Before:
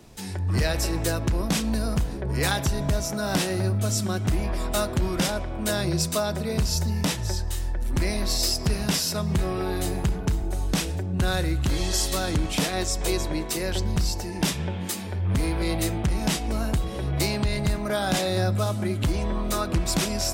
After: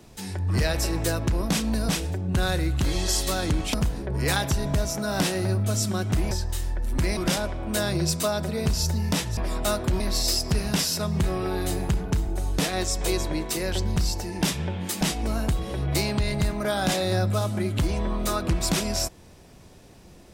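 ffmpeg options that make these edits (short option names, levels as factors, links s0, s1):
-filter_complex "[0:a]asplit=9[s0][s1][s2][s3][s4][s5][s6][s7][s8];[s0]atrim=end=1.892[s9];[s1]atrim=start=10.738:end=12.592[s10];[s2]atrim=start=1.888:end=4.462[s11];[s3]atrim=start=7.288:end=8.152[s12];[s4]atrim=start=5.088:end=7.292[s13];[s5]atrim=start=4.458:end=5.092[s14];[s6]atrim=start=8.148:end=10.742[s15];[s7]atrim=start=12.588:end=15.012[s16];[s8]atrim=start=16.258[s17];[s9][s10]acrossfade=d=0.004:c1=hsin:c2=hsin[s18];[s18][s11]acrossfade=d=0.004:c1=hsin:c2=hsin[s19];[s19][s12]acrossfade=d=0.004:c1=hsin:c2=hsin[s20];[s20][s13]acrossfade=d=0.004:c1=hsin:c2=hsin[s21];[s21][s14]acrossfade=d=0.004:c1=hsin:c2=hsin[s22];[s22][s15]acrossfade=d=0.004:c1=hsin:c2=hsin[s23];[s23][s16]acrossfade=d=0.004:c1=hsin:c2=hsin[s24];[s24][s17]acrossfade=d=0.004:c1=hsin:c2=hsin"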